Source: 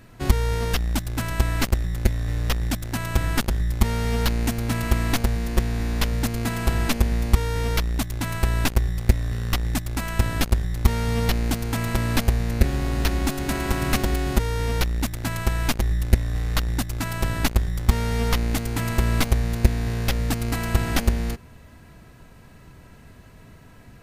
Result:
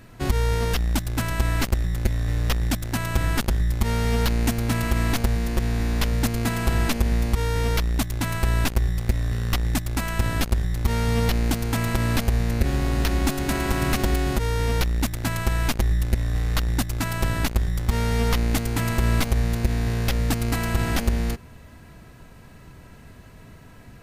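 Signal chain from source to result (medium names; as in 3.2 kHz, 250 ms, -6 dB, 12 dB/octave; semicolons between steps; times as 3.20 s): peak limiter -12.5 dBFS, peak gain reduction 8 dB; trim +1.5 dB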